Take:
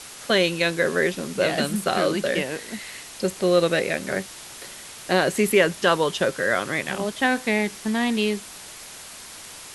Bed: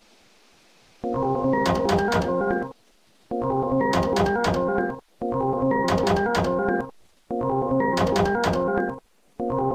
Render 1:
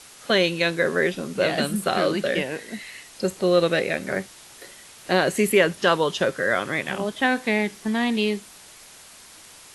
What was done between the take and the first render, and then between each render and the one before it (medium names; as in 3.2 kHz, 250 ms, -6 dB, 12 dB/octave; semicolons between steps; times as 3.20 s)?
noise print and reduce 6 dB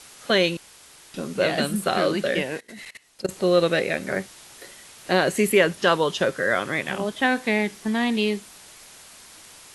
0.57–1.14 s: room tone; 2.58–3.29 s: level held to a coarse grid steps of 20 dB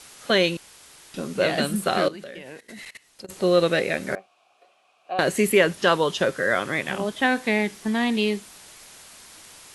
2.08–3.30 s: compression 8:1, threshold -35 dBFS; 4.15–5.19 s: vowel filter a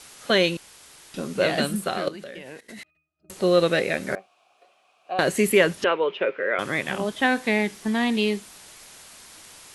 1.64–2.07 s: fade out, to -8 dB; 2.83–3.30 s: pitch-class resonator D#, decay 0.4 s; 5.84–6.59 s: cabinet simulation 420–2500 Hz, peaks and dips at 420 Hz +5 dB, 740 Hz -6 dB, 1.1 kHz -5 dB, 1.7 kHz -6 dB, 2.4 kHz +9 dB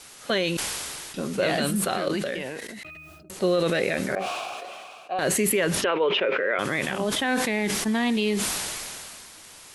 peak limiter -14.5 dBFS, peak gain reduction 9 dB; decay stretcher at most 23 dB/s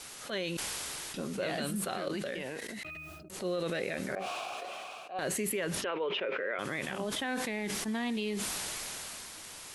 compression 2:1, threshold -39 dBFS, peak gain reduction 11 dB; attacks held to a fixed rise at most 180 dB/s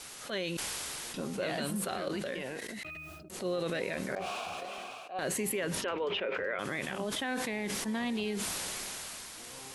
add bed -29.5 dB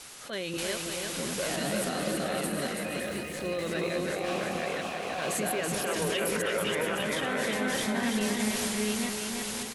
chunks repeated in reverse 535 ms, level -0.5 dB; bouncing-ball echo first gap 330 ms, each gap 0.7×, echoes 5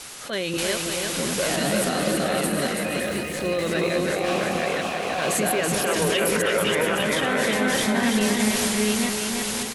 trim +7.5 dB